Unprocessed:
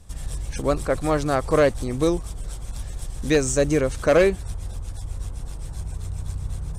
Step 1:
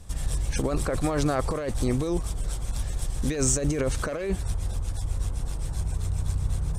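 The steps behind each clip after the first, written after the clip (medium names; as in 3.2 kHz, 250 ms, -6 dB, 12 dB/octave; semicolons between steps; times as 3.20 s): compressor with a negative ratio -24 dBFS, ratio -1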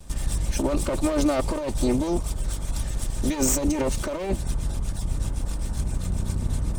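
comb filter that takes the minimum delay 3.3 ms; dynamic bell 1.6 kHz, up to -7 dB, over -48 dBFS, Q 1.6; trim +3 dB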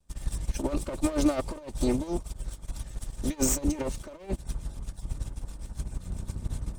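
upward expansion 2.5:1, over -35 dBFS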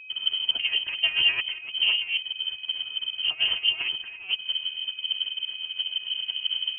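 whistle 570 Hz -43 dBFS; frequency inversion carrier 3.1 kHz; trim +1.5 dB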